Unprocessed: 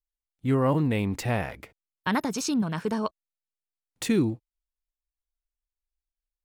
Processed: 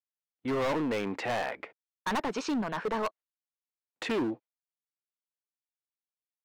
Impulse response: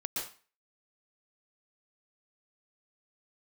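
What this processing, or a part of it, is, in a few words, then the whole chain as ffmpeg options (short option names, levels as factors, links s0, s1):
walkie-talkie: -af "highpass=410,lowpass=2400,asoftclip=type=hard:threshold=0.0251,agate=range=0.158:threshold=0.00178:ratio=16:detection=peak,volume=1.88"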